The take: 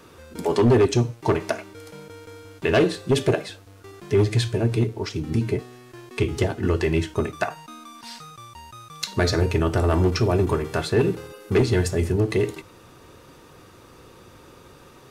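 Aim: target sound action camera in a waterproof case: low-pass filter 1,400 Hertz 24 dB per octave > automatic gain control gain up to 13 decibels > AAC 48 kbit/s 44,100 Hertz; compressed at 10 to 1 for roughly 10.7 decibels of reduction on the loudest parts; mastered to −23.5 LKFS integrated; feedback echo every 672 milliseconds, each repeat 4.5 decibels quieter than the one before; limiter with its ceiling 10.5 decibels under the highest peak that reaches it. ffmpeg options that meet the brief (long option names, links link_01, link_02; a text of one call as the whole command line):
ffmpeg -i in.wav -af "acompressor=threshold=-25dB:ratio=10,alimiter=limit=-23dB:level=0:latency=1,lowpass=frequency=1400:width=0.5412,lowpass=frequency=1400:width=1.3066,aecho=1:1:672|1344|2016|2688|3360|4032|4704|5376|6048:0.596|0.357|0.214|0.129|0.0772|0.0463|0.0278|0.0167|0.01,dynaudnorm=maxgain=13dB,volume=1dB" -ar 44100 -c:a aac -b:a 48k out.aac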